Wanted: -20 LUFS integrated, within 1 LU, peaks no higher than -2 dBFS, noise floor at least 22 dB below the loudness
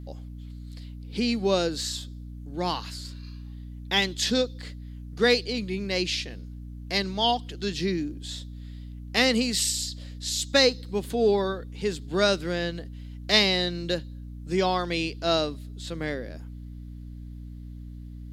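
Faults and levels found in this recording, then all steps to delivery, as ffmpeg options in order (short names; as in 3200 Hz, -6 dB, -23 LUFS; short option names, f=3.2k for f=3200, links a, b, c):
hum 60 Hz; harmonics up to 300 Hz; hum level -37 dBFS; loudness -26.0 LUFS; peak -3.5 dBFS; loudness target -20.0 LUFS
-> -af "bandreject=f=60:t=h:w=4,bandreject=f=120:t=h:w=4,bandreject=f=180:t=h:w=4,bandreject=f=240:t=h:w=4,bandreject=f=300:t=h:w=4"
-af "volume=6dB,alimiter=limit=-2dB:level=0:latency=1"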